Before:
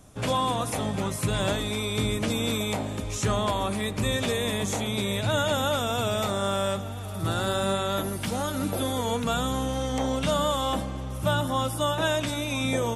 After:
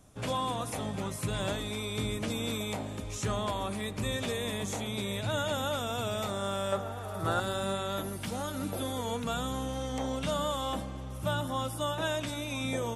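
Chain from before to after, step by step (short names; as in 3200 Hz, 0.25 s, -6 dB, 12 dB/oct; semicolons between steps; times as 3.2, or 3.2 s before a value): 6.72–7.4 band shelf 830 Hz +8 dB 2.5 oct; gain -6.5 dB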